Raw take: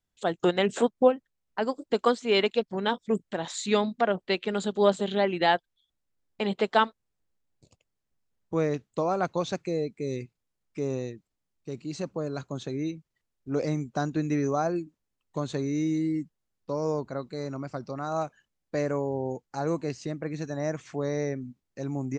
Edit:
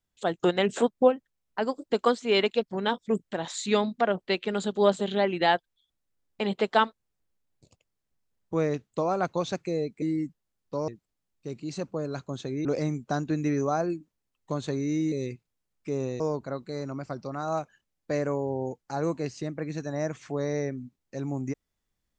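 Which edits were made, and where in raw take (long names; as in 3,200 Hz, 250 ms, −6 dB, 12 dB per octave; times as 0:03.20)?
0:10.02–0:11.10: swap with 0:15.98–0:16.84
0:12.87–0:13.51: remove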